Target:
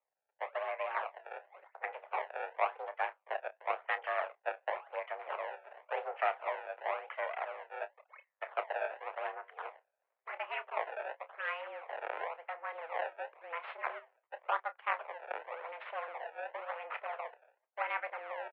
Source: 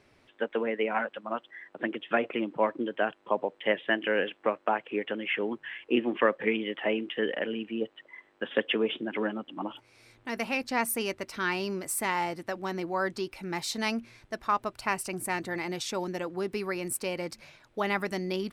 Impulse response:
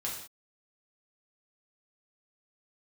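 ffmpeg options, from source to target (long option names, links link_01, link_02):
-filter_complex "[0:a]afftdn=noise_reduction=20:noise_floor=-45,aeval=exprs='max(val(0),0)':channel_layout=same,flanger=delay=1.9:depth=9:regen=-88:speed=0.27:shape=sinusoidal,acrusher=samples=26:mix=1:aa=0.000001:lfo=1:lforange=41.6:lforate=0.93,asplit=2[link_01][link_02];[link_02]adelay=29,volume=-12.5dB[link_03];[link_01][link_03]amix=inputs=2:normalize=0,highpass=frequency=400:width_type=q:width=0.5412,highpass=frequency=400:width_type=q:width=1.307,lowpass=frequency=2400:width_type=q:width=0.5176,lowpass=frequency=2400:width_type=q:width=0.7071,lowpass=frequency=2400:width_type=q:width=1.932,afreqshift=160,volume=3.5dB"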